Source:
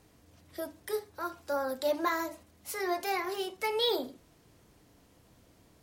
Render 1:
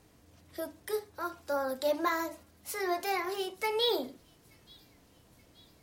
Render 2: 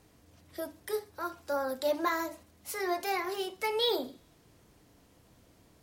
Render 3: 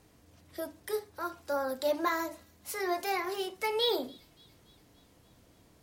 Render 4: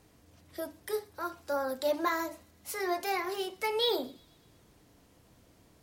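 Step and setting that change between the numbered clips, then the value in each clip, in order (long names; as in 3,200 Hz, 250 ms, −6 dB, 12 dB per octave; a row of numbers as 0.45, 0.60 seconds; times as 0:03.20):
delay with a high-pass on its return, delay time: 878, 63, 287, 120 milliseconds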